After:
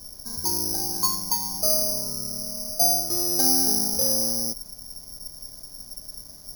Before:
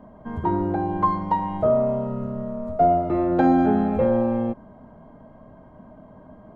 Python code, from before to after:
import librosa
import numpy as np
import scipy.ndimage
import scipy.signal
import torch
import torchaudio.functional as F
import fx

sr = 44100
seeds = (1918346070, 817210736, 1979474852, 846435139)

y = fx.dmg_noise_colour(x, sr, seeds[0], colour='brown', level_db=-38.0)
y = (np.kron(scipy.signal.resample_poly(y, 1, 8), np.eye(8)[0]) * 8)[:len(y)]
y = y * 10.0 ** (-12.0 / 20.0)